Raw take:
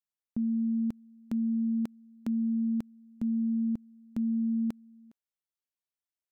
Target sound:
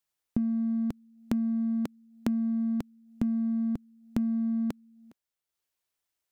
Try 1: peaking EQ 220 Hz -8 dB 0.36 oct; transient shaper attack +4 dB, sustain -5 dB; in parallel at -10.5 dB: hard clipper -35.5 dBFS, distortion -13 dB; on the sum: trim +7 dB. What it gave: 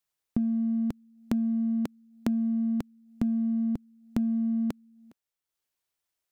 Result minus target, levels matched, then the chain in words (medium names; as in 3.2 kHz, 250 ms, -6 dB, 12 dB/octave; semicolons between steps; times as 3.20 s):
hard clipper: distortion -5 dB
peaking EQ 220 Hz -8 dB 0.36 oct; transient shaper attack +4 dB, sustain -5 dB; in parallel at -10.5 dB: hard clipper -45 dBFS, distortion -8 dB; on the sum: trim +7 dB